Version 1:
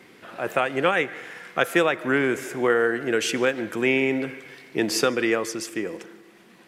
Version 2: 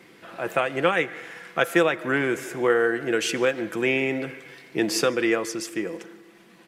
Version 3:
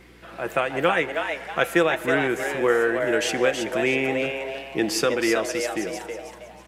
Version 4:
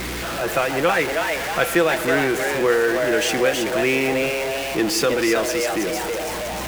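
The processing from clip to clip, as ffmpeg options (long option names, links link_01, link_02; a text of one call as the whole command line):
ffmpeg -i in.wav -af "aecho=1:1:6:0.31,volume=-1dB" out.wav
ffmpeg -i in.wav -filter_complex "[0:a]aeval=exprs='val(0)+0.00224*(sin(2*PI*60*n/s)+sin(2*PI*2*60*n/s)/2+sin(2*PI*3*60*n/s)/3+sin(2*PI*4*60*n/s)/4+sin(2*PI*5*60*n/s)/5)':channel_layout=same,asplit=5[link_01][link_02][link_03][link_04][link_05];[link_02]adelay=321,afreqshift=140,volume=-6dB[link_06];[link_03]adelay=642,afreqshift=280,volume=-15.4dB[link_07];[link_04]adelay=963,afreqshift=420,volume=-24.7dB[link_08];[link_05]adelay=1284,afreqshift=560,volume=-34.1dB[link_09];[link_01][link_06][link_07][link_08][link_09]amix=inputs=5:normalize=0" out.wav
ffmpeg -i in.wav -af "aeval=exprs='val(0)+0.5*0.075*sgn(val(0))':channel_layout=same" out.wav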